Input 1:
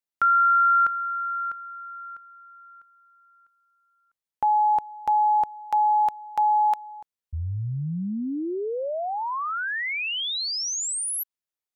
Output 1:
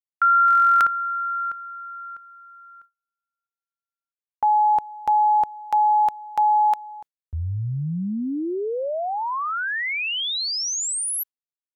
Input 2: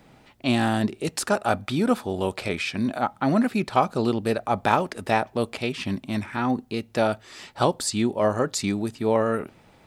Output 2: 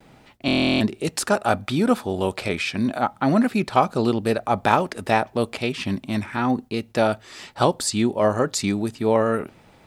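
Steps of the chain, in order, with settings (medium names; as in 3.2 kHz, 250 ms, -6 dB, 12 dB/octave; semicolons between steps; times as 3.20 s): gate with hold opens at -47 dBFS, closes at -51 dBFS, hold 22 ms, range -34 dB; buffer glitch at 0.46 s, samples 1024, times 14; trim +2.5 dB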